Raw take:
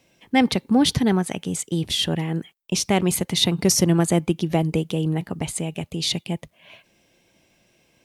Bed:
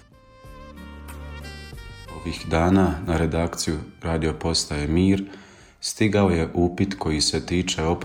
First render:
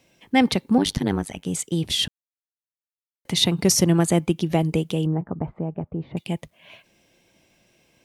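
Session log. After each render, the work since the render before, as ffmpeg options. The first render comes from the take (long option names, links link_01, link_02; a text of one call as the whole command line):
ffmpeg -i in.wav -filter_complex "[0:a]asettb=1/sr,asplit=3[link_01][link_02][link_03];[link_01]atrim=end=0.784[link_04];[link_02]atrim=start=0.78:end=1.46,asetpts=PTS-STARTPTS,afade=type=in:duration=0.004:curve=qsin,afade=type=out:start_time=0.676:duration=0.004:curve=qsin,tremolo=f=100:d=0.974[link_05];[link_03]atrim=start=1.456[link_06];[link_04][link_05]acrossfade=duration=0.004:curve1=hsin:curve2=qsin[link_07];[link_07][link_06]acrossfade=duration=0.004:curve1=qsin:curve2=hsin,asettb=1/sr,asplit=3[link_08][link_09][link_10];[link_08]atrim=end=5.064[link_11];[link_09]atrim=start=5.06:end=6.17,asetpts=PTS-STARTPTS,afade=type=in:duration=0.004:curve=qsin,afade=type=out:start_time=1.106:duration=0.004:curve=qsin,lowpass=frequency=1300:width=0.5412,lowpass=frequency=1300:width=1.3066[link_12];[link_10]atrim=start=6.166[link_13];[link_11][link_12]acrossfade=duration=0.004:curve1=hsin:curve2=qsin[link_14];[link_14][link_13]acrossfade=duration=0.004:curve1=qsin:curve2=hsin,asplit=3[link_15][link_16][link_17];[link_15]atrim=end=2.08,asetpts=PTS-STARTPTS,afade=type=out:start_time=2.076:duration=0.004:curve=hsin[link_18];[link_16]atrim=start=2.08:end=3.25,asetpts=PTS-STARTPTS,volume=0[link_19];[link_17]atrim=start=3.25,asetpts=PTS-STARTPTS,afade=type=in:duration=0.004:curve=hsin[link_20];[link_18][link_19][link_20]concat=n=3:v=0:a=1" out.wav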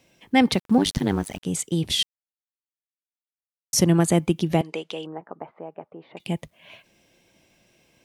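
ffmpeg -i in.wav -filter_complex "[0:a]asettb=1/sr,asplit=3[link_01][link_02][link_03];[link_01]atrim=end=0.534[link_04];[link_02]atrim=start=0.53:end=1.43,asetpts=PTS-STARTPTS,afade=type=in:duration=0.004:curve=qsin,afade=type=out:start_time=0.896:duration=0.004:curve=qsin,aeval=exprs='val(0)*gte(abs(val(0)),0.00944)':channel_layout=same[link_05];[link_03]atrim=start=1.426[link_06];[link_04][link_05]acrossfade=duration=0.004:curve1=hsin:curve2=qsin[link_07];[link_07][link_06]acrossfade=duration=0.004:curve1=qsin:curve2=hsin,asettb=1/sr,asplit=3[link_08][link_09][link_10];[link_08]atrim=end=4.614[link_11];[link_09]atrim=start=4.61:end=6.2,asetpts=PTS-STARTPTS,afade=type=in:duration=0.004:curve=qsin,afade=type=out:start_time=1.586:duration=0.004:curve=qsin,highpass=560,lowpass=5200[link_12];[link_10]atrim=start=6.196[link_13];[link_11][link_12]acrossfade=duration=0.004:curve1=hsin:curve2=qsin[link_14];[link_14][link_13]acrossfade=duration=0.004:curve1=qsin:curve2=hsin,asplit=3[link_15][link_16][link_17];[link_15]atrim=end=2.03,asetpts=PTS-STARTPTS,afade=type=out:start_time=2.026:duration=0.004:curve=hsin[link_18];[link_16]atrim=start=2.03:end=3.73,asetpts=PTS-STARTPTS,volume=0[link_19];[link_17]atrim=start=3.73,asetpts=PTS-STARTPTS,afade=type=in:duration=0.004:curve=hsin[link_20];[link_18][link_19][link_20]concat=n=3:v=0:a=1" out.wav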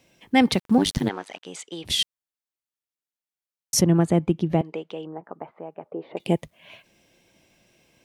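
ffmpeg -i in.wav -filter_complex "[0:a]asplit=3[link_01][link_02][link_03];[link_01]afade=type=out:start_time=1.08:duration=0.02[link_04];[link_02]highpass=550,lowpass=4500,afade=type=in:start_time=1.08:duration=0.02,afade=type=out:start_time=1.84:duration=0.02[link_05];[link_03]afade=type=in:start_time=1.84:duration=0.02[link_06];[link_04][link_05][link_06]amix=inputs=3:normalize=0,asettb=1/sr,asplit=3[link_07][link_08][link_09];[link_07]atrim=end=3.814[link_10];[link_08]atrim=start=3.81:end=5.24,asetpts=PTS-STARTPTS,afade=type=in:duration=0.004:curve=qsin,afade=type=out:start_time=1.426:duration=0.004:curve=qsin,lowpass=frequency=1200:poles=1[link_11];[link_09]atrim=start=5.236[link_12];[link_10][link_11]acrossfade=duration=0.004:curve1=hsin:curve2=qsin[link_13];[link_13][link_12]acrossfade=duration=0.004:curve1=qsin:curve2=hsin,asettb=1/sr,asplit=3[link_14][link_15][link_16];[link_14]atrim=end=5.854[link_17];[link_15]atrim=start=5.85:end=6.36,asetpts=PTS-STARTPTS,afade=type=in:duration=0.004:curve=qsin,afade=type=out:start_time=0.506:duration=0.004:curve=qsin,equalizer=frequency=450:width_type=o:width=1.7:gain=11.5[link_18];[link_16]atrim=start=6.356[link_19];[link_17][link_18]acrossfade=duration=0.004:curve1=hsin:curve2=qsin[link_20];[link_20][link_19]acrossfade=duration=0.004:curve1=qsin:curve2=hsin" out.wav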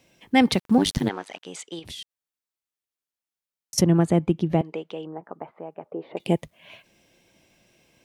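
ffmpeg -i in.wav -filter_complex "[0:a]asettb=1/sr,asplit=3[link_01][link_02][link_03];[link_01]atrim=end=1.794[link_04];[link_02]atrim=start=1.79:end=3.78,asetpts=PTS-STARTPTS,afade=type=in:duration=0.004:curve=qsin,afade=type=out:start_time=1.986:duration=0.004:curve=qsin,acompressor=threshold=-38dB:ratio=4:attack=3.2:release=140:knee=1:detection=peak[link_05];[link_03]atrim=start=3.776[link_06];[link_04][link_05]acrossfade=duration=0.004:curve1=hsin:curve2=qsin[link_07];[link_07][link_06]acrossfade=duration=0.004:curve1=qsin:curve2=hsin" out.wav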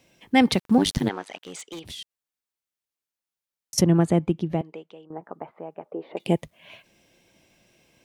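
ffmpeg -i in.wav -filter_complex "[0:a]asplit=3[link_01][link_02][link_03];[link_01]afade=type=out:start_time=1.41:duration=0.02[link_04];[link_02]aeval=exprs='0.0299*(abs(mod(val(0)/0.0299+3,4)-2)-1)':channel_layout=same,afade=type=in:start_time=1.41:duration=0.02,afade=type=out:start_time=1.96:duration=0.02[link_05];[link_03]afade=type=in:start_time=1.96:duration=0.02[link_06];[link_04][link_05][link_06]amix=inputs=3:normalize=0,asettb=1/sr,asplit=3[link_07][link_08][link_09];[link_07]atrim=end=5.814[link_10];[link_08]atrim=start=5.81:end=6.25,asetpts=PTS-STARTPTS,afade=type=in:duration=0.004:curve=qsin,afade=type=out:start_time=0.436:duration=0.004:curve=qsin,highpass=180[link_11];[link_09]atrim=start=6.246[link_12];[link_10][link_11]acrossfade=duration=0.004:curve1=hsin:curve2=qsin[link_13];[link_13][link_12]acrossfade=duration=0.004:curve1=qsin:curve2=hsin,asplit=2[link_14][link_15];[link_14]atrim=end=5.1,asetpts=PTS-STARTPTS,afade=type=out:start_time=4.09:duration=1.01:silence=0.158489[link_16];[link_15]atrim=start=5.1,asetpts=PTS-STARTPTS,afade=type=in:duration=0.004:curve=hsin:silence=0.158489[link_17];[link_16][link_17]concat=n=2:v=0:a=1" out.wav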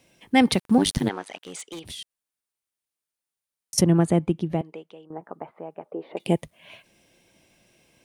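ffmpeg -i in.wav -af "equalizer=frequency=9400:width=4.8:gain=8" out.wav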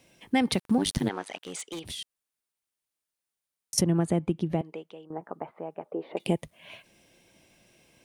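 ffmpeg -i in.wav -af "acompressor=threshold=-23dB:ratio=2.5" out.wav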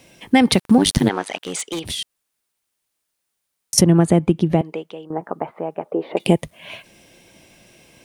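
ffmpeg -i in.wav -af "volume=11dB,alimiter=limit=-1dB:level=0:latency=1" out.wav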